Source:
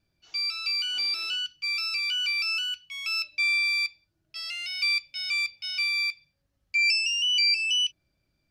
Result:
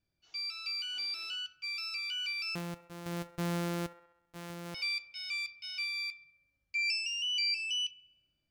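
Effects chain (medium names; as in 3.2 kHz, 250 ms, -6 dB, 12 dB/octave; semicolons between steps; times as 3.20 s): 2.55–4.75 s: sorted samples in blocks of 256 samples; feedback echo behind a band-pass 66 ms, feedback 59%, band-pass 1 kHz, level -13 dB; trim -9 dB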